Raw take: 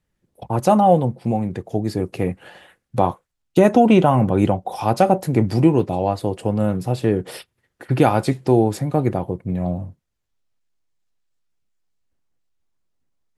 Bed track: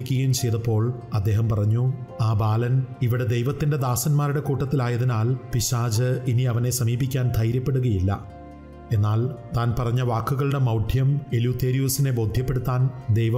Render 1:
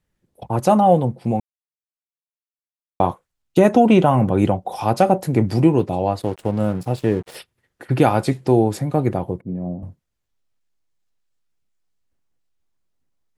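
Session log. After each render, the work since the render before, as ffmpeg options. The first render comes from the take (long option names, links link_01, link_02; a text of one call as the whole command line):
ffmpeg -i in.wav -filter_complex "[0:a]asplit=3[link_01][link_02][link_03];[link_01]afade=type=out:start_time=6.21:duration=0.02[link_04];[link_02]aeval=exprs='sgn(val(0))*max(abs(val(0))-0.0126,0)':channel_layout=same,afade=type=in:start_time=6.21:duration=0.02,afade=type=out:start_time=7.35:duration=0.02[link_05];[link_03]afade=type=in:start_time=7.35:duration=0.02[link_06];[link_04][link_05][link_06]amix=inputs=3:normalize=0,asettb=1/sr,asplit=3[link_07][link_08][link_09];[link_07]atrim=end=9.414[link_10];[link_08]atrim=start=9.41:end=9.83,asetpts=PTS-STARTPTS,afade=type=in:duration=0.004:curve=qsin,afade=type=out:start_time=0.416:duration=0.004:curve=qsin,bandpass=frequency=280:width_type=q:width=1.1[link_11];[link_09]atrim=start=9.826[link_12];[link_10][link_11]acrossfade=duration=0.004:curve1=hsin:curve2=qsin[link_13];[link_13][link_12]acrossfade=duration=0.004:curve1=qsin:curve2=hsin,asplit=3[link_14][link_15][link_16];[link_14]atrim=end=1.4,asetpts=PTS-STARTPTS,afade=type=out:start_time=1.396:duration=0.004:curve=hsin[link_17];[link_15]atrim=start=1.4:end=3,asetpts=PTS-STARTPTS,volume=0[link_18];[link_16]atrim=start=3,asetpts=PTS-STARTPTS,afade=type=in:duration=0.004:curve=hsin[link_19];[link_17][link_18][link_19]concat=n=3:v=0:a=1" out.wav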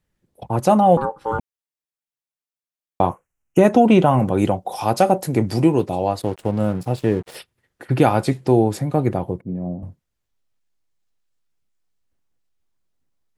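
ffmpeg -i in.wav -filter_complex "[0:a]asettb=1/sr,asplit=3[link_01][link_02][link_03];[link_01]atrim=end=0.974[link_04];[link_02]atrim=start=0.97:end=1.39,asetpts=PTS-STARTPTS,afade=type=in:duration=0.004:curve=qsin,afade=type=out:start_time=0.416:duration=0.004:curve=qsin,aeval=exprs='val(0)*sin(2*PI*670*n/s)':channel_layout=same[link_05];[link_03]atrim=start=1.386[link_06];[link_04][link_05]acrossfade=duration=0.004:curve1=hsin:curve2=qsin[link_07];[link_07][link_06]acrossfade=duration=0.004:curve1=qsin:curve2=hsin,asettb=1/sr,asplit=3[link_08][link_09][link_10];[link_08]atrim=end=3.094[link_11];[link_09]atrim=start=3.09:end=3.59,asetpts=PTS-STARTPTS,afade=type=in:duration=0.004:curve=qsin,afade=type=out:start_time=0.496:duration=0.004:curve=qsin,asuperstop=centerf=4100:order=8:qfactor=1.5[link_12];[link_10]atrim=start=3.586[link_13];[link_11][link_12]acrossfade=duration=0.004:curve1=hsin:curve2=qsin[link_14];[link_14][link_13]acrossfade=duration=0.004:curve1=qsin:curve2=hsin,asettb=1/sr,asplit=3[link_15][link_16][link_17];[link_15]atrim=end=4.194[link_18];[link_16]atrim=start=4.19:end=6.22,asetpts=PTS-STARTPTS,afade=type=in:duration=0.004:curve=qsin,afade=type=out:start_time=2.026:duration=0.004:curve=qsin,bass=frequency=250:gain=-3,treble=frequency=4000:gain=5[link_19];[link_17]atrim=start=6.216[link_20];[link_18][link_19]acrossfade=duration=0.004:curve1=hsin:curve2=qsin[link_21];[link_21][link_20]acrossfade=duration=0.004:curve1=qsin:curve2=hsin" out.wav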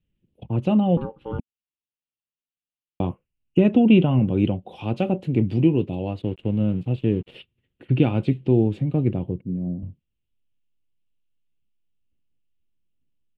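ffmpeg -i in.wav -filter_complex "[0:a]acrossover=split=8400[link_01][link_02];[link_02]acompressor=threshold=-55dB:ratio=4:attack=1:release=60[link_03];[link_01][link_03]amix=inputs=2:normalize=0,firequalizer=gain_entry='entry(240,0);entry(750,-16);entry(1800,-15);entry(2800,2);entry(5100,-26)':delay=0.05:min_phase=1" out.wav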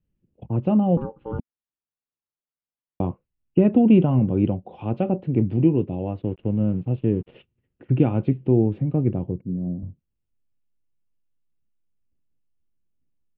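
ffmpeg -i in.wav -af "lowpass=1600" out.wav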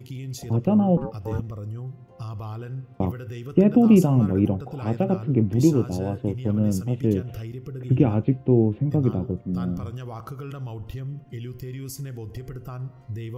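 ffmpeg -i in.wav -i bed.wav -filter_complex "[1:a]volume=-12.5dB[link_01];[0:a][link_01]amix=inputs=2:normalize=0" out.wav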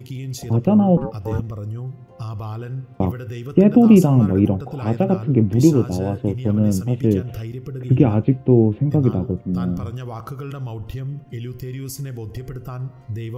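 ffmpeg -i in.wav -af "volume=4.5dB,alimiter=limit=-2dB:level=0:latency=1" out.wav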